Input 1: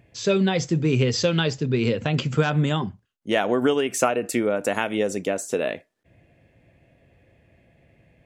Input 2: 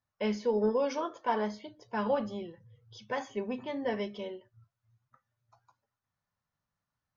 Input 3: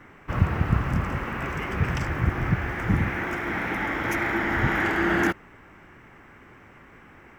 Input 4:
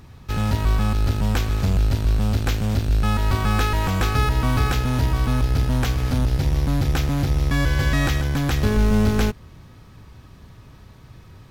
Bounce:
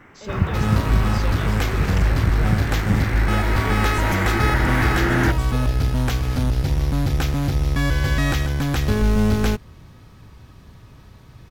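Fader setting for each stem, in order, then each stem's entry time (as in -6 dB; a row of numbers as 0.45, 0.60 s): -13.0, -10.5, +1.0, 0.0 dB; 0.00, 0.00, 0.00, 0.25 s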